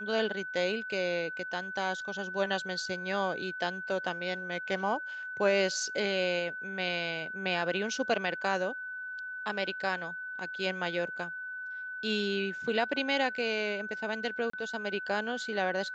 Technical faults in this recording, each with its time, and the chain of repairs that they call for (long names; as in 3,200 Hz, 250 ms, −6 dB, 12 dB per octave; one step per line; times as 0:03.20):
whistle 1,500 Hz −37 dBFS
0:14.50–0:14.53: drop-out 34 ms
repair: notch filter 1,500 Hz, Q 30
repair the gap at 0:14.50, 34 ms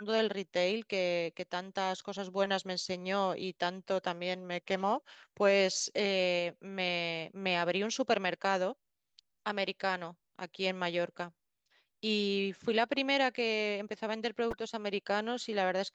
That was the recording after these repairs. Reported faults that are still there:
none of them is left